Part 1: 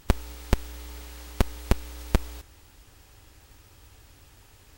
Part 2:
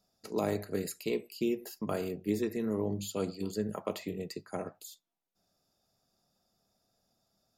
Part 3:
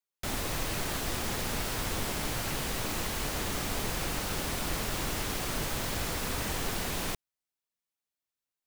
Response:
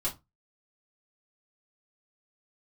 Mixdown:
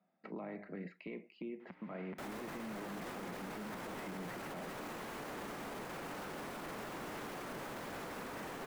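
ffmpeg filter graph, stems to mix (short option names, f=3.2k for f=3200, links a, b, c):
-filter_complex "[0:a]adelay=1600,volume=-6dB[a];[1:a]acompressor=threshold=-36dB:ratio=6,volume=0.5dB[b];[2:a]adelay=1950,volume=-5dB[c];[a][b]amix=inputs=2:normalize=0,highpass=170,equalizer=f=180:t=q:w=4:g=10,equalizer=f=430:t=q:w=4:g=-8,equalizer=f=2.1k:t=q:w=4:g=10,lowpass=f=3.2k:w=0.5412,lowpass=f=3.2k:w=1.3066,alimiter=limit=-21dB:level=0:latency=1:release=340,volume=0dB[d];[c][d]amix=inputs=2:normalize=0,acrossover=split=160 2100:gain=0.0891 1 0.224[e][f][g];[e][f][g]amix=inputs=3:normalize=0,alimiter=level_in=12dB:limit=-24dB:level=0:latency=1:release=14,volume=-12dB"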